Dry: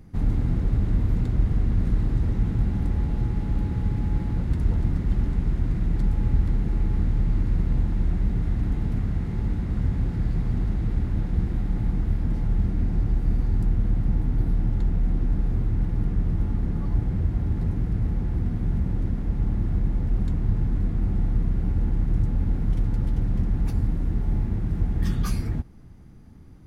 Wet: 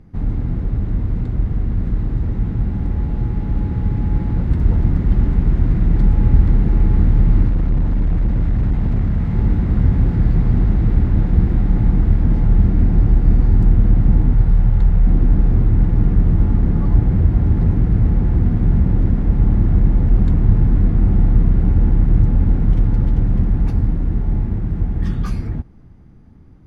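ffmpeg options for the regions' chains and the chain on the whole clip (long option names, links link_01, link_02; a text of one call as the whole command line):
ffmpeg -i in.wav -filter_complex "[0:a]asettb=1/sr,asplit=3[link_01][link_02][link_03];[link_01]atrim=end=7.484[link_04];[link_02]atrim=start=7.48:end=9.35,asetpts=PTS-STARTPTS,afade=type=in:duration=0.004:curve=qsin,afade=type=out:start_time=1.866:duration=0.004:curve=qsin,equalizer=frequency=370:width_type=o:width=0.46:gain=-12,volume=22dB,asoftclip=hard,volume=-22dB[link_05];[link_03]atrim=start=9.346[link_06];[link_04][link_05]acrossfade=duration=0.004:curve1=hsin:curve2=qsin[link_07];[link_07][link_06]acrossfade=duration=0.004:curve1=qsin:curve2=hsin,asettb=1/sr,asplit=3[link_08][link_09][link_10];[link_08]atrim=end=14.334[link_11];[link_09]atrim=start=14.33:end=15.07,asetpts=PTS-STARTPTS,afade=type=in:duration=0.004:curve=qsin,afade=type=out:start_time=0.736:duration=0.004:curve=qsin,equalizer=frequency=280:width=1.8:gain=-11.5,bandreject=frequency=680:width=20[link_12];[link_10]atrim=start=15.066[link_13];[link_11][link_12]acrossfade=duration=0.004:curve1=hsin:curve2=qsin[link_14];[link_14][link_13]acrossfade=duration=0.004:curve1=qsin:curve2=hsin,aemphasis=mode=reproduction:type=75kf,dynaudnorm=framelen=930:gausssize=9:maxgain=8.5dB,volume=2.5dB" out.wav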